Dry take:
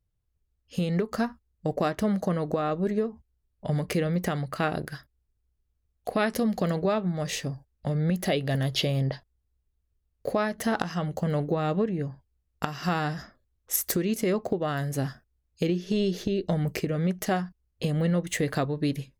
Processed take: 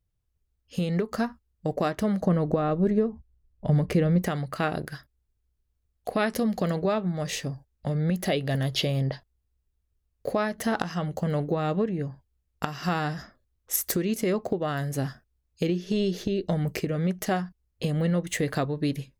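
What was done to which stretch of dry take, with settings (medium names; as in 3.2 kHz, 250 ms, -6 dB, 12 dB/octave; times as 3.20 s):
2.21–4.22 s: tilt EQ -2 dB/octave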